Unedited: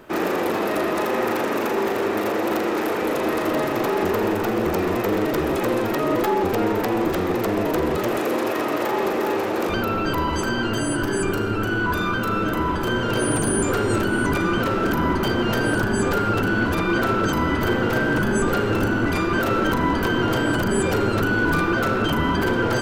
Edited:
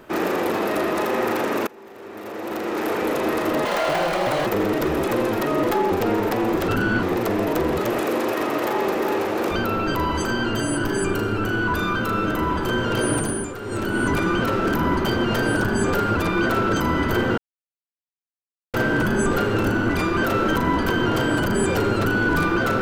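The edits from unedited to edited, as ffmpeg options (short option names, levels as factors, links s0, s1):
-filter_complex "[0:a]asplit=10[s0][s1][s2][s3][s4][s5][s6][s7][s8][s9];[s0]atrim=end=1.67,asetpts=PTS-STARTPTS,afade=t=out:st=1.666:d=0.004:c=hsin:silence=0.0749894[s10];[s1]atrim=start=1.67:end=3.654,asetpts=PTS-STARTPTS,afade=t=in:d=1.25:c=qua:silence=0.0749894[s11];[s2]atrim=start=3.65:end=4.99,asetpts=PTS-STARTPTS,asetrate=72324,aresample=44100[s12];[s3]atrim=start=4.986:end=7.212[s13];[s4]atrim=start=16.348:end=16.692[s14];[s5]atrim=start=7.208:end=13.72,asetpts=PTS-STARTPTS,afade=t=out:st=6.092:d=0.42:silence=0.251189[s15];[s6]atrim=start=13.72:end=13.79,asetpts=PTS-STARTPTS,volume=0.251[s16];[s7]atrim=start=13.79:end=16.352,asetpts=PTS-STARTPTS,afade=t=in:d=0.42:silence=0.251189[s17];[s8]atrim=start=16.688:end=17.9,asetpts=PTS-STARTPTS,afade=t=out:st=1.208:d=0.004:c=hsin,apad=pad_dur=1.36[s18];[s9]atrim=start=17.9,asetpts=PTS-STARTPTS,afade=t=in:d=0.004:c=hsin[s19];[s10][s11]concat=n=2:v=0:a=1[s20];[s20][s12]acrossfade=d=0.004:c1=hsin:c2=hsin[s21];[s21][s13]acrossfade=d=0.004:c1=hsin:c2=hsin[s22];[s22][s14]acrossfade=d=0.004:c1=hsin:c2=hsin[s23];[s15][s16][s17]concat=n=3:v=0:a=1[s24];[s23][s24]acrossfade=d=0.004:c1=hsin:c2=hsin[s25];[s18][s19]concat=n=2:v=0:a=1[s26];[s25][s26]acrossfade=d=0.004:c1=hsin:c2=hsin"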